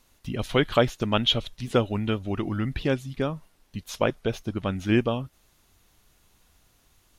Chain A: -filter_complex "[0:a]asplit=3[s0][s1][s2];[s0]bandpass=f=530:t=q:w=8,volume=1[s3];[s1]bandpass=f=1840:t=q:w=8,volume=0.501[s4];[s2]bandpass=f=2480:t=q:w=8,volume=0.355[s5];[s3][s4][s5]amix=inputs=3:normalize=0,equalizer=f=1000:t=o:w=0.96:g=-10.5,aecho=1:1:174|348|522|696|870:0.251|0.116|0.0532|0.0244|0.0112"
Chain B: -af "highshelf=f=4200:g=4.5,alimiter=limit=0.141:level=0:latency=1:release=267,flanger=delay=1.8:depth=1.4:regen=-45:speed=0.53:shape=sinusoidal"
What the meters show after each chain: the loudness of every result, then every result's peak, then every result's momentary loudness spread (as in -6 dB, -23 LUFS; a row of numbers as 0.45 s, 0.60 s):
-38.0 LUFS, -35.5 LUFS; -19.0 dBFS, -20.0 dBFS; 16 LU, 7 LU